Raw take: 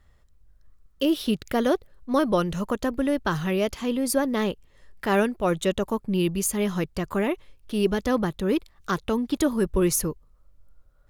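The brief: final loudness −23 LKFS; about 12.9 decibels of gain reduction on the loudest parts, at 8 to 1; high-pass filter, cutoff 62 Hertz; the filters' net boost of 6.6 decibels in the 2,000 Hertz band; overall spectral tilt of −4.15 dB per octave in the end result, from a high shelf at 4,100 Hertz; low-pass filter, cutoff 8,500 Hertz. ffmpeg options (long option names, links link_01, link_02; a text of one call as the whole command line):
ffmpeg -i in.wav -af "highpass=62,lowpass=8500,equalizer=frequency=2000:width_type=o:gain=7.5,highshelf=frequency=4100:gain=5,acompressor=threshold=-30dB:ratio=8,volume=11.5dB" out.wav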